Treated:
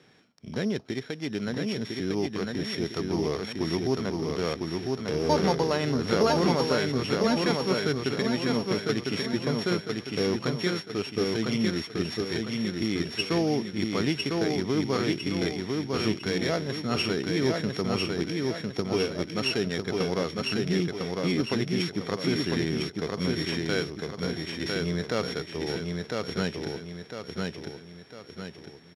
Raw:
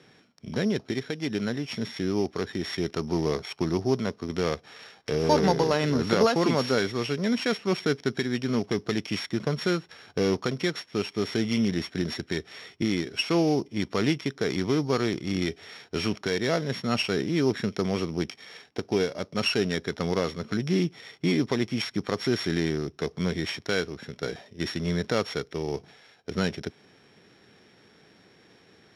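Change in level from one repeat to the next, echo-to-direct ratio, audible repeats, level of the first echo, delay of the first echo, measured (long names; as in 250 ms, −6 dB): −7.0 dB, −2.0 dB, 4, −3.0 dB, 1,003 ms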